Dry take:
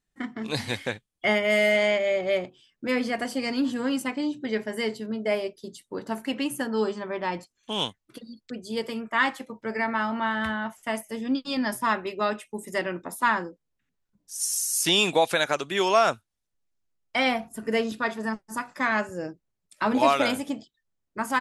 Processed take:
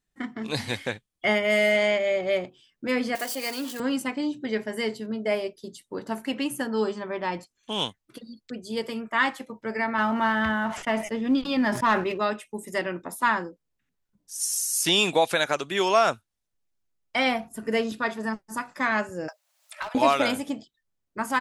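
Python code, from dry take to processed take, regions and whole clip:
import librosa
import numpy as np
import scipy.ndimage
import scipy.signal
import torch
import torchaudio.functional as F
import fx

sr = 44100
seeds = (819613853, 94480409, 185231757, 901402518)

y = fx.chain(x, sr, fx.crossing_spikes(level_db=-27.5),
    fx.highpass(hz=420.0, slope=12), at=(3.15, 3.8))
y = fx.chain(y, sr, fx.lowpass(hz=3300.0, slope=12),
    fx.leveller(passes=1),
    fx.sustainer(db_per_s=88.0), at=(9.98, 12.18))
y = fx.chain(y, sr, fx.steep_highpass(hz=570.0, slope=96),
    fx.clip_hard(threshold_db=-22.0),
    fx.band_squash(depth_pct=100), at=(19.28, 19.95))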